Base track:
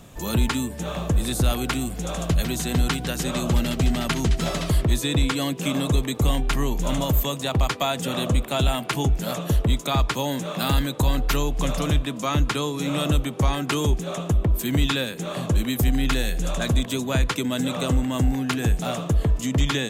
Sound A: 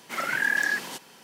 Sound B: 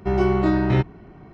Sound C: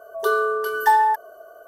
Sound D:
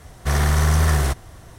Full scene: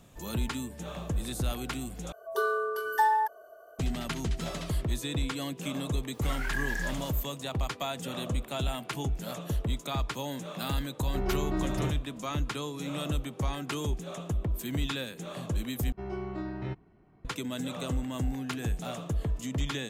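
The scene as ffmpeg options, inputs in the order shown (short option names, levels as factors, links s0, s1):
-filter_complex "[2:a]asplit=2[s0][s1];[0:a]volume=0.316[s2];[1:a]acrusher=bits=8:mix=0:aa=0.000001[s3];[s2]asplit=3[s4][s5][s6];[s4]atrim=end=2.124[s7];[3:a]atrim=end=1.67,asetpts=PTS-STARTPTS,volume=0.398[s8];[s5]atrim=start=3.786:end=15.924[s9];[s1]atrim=end=1.33,asetpts=PTS-STARTPTS,volume=0.141[s10];[s6]atrim=start=17.246[s11];[s3]atrim=end=1.23,asetpts=PTS-STARTPTS,volume=0.316,afade=t=in:d=0.004:c=hsin,afade=t=out:st=1.226:d=0.004:c=hsin,adelay=6120[s12];[s0]atrim=end=1.33,asetpts=PTS-STARTPTS,volume=0.237,afade=t=in:d=0.004:c=hsin,afade=t=out:st=1.326:d=0.004:c=hsin,adelay=11080[s13];[s7][s8]acrossfade=d=0.004:c1=hsin:c2=hsin[s14];[s14][s9]acrossfade=d=0.004:c1=hsin:c2=hsin[s15];[s15][s10]acrossfade=d=0.004:c1=hsin:c2=hsin[s16];[s16][s11]acrossfade=d=0.004:c1=hsin:c2=hsin[s17];[s17][s12][s13]amix=inputs=3:normalize=0"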